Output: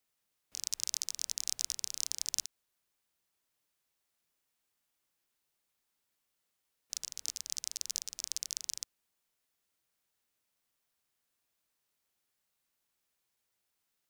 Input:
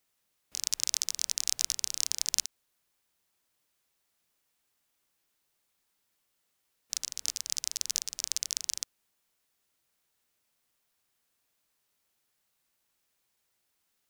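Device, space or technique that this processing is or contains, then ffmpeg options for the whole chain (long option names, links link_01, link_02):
one-band saturation: -filter_complex "[0:a]acrossover=split=230|3000[link_01][link_02][link_03];[link_02]asoftclip=type=tanh:threshold=-34dB[link_04];[link_01][link_04][link_03]amix=inputs=3:normalize=0,volume=-5dB"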